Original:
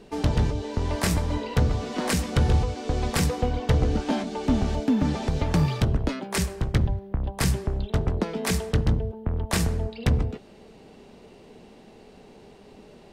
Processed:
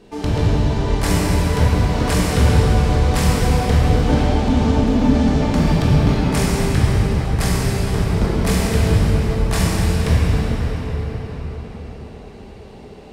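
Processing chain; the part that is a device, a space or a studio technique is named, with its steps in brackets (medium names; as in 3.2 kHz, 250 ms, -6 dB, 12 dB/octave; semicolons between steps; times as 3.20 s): cathedral (reverberation RT60 5.5 s, pre-delay 18 ms, DRR -7.5 dB)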